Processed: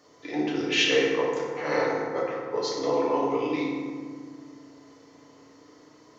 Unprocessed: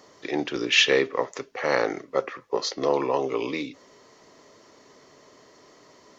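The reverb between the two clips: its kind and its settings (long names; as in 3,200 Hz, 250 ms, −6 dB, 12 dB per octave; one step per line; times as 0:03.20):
feedback delay network reverb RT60 1.9 s, low-frequency decay 1.55×, high-frequency decay 0.5×, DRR −5.5 dB
level −8.5 dB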